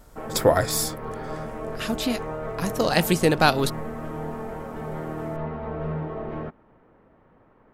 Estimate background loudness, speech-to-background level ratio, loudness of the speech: −33.5 LKFS, 10.0 dB, −23.5 LKFS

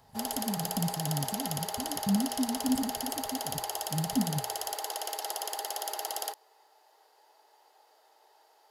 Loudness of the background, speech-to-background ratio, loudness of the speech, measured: −34.5 LKFS, 0.0 dB, −34.5 LKFS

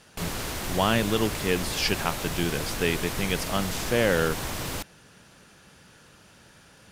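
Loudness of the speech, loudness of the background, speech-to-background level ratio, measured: −27.5 LKFS, −32.0 LKFS, 4.5 dB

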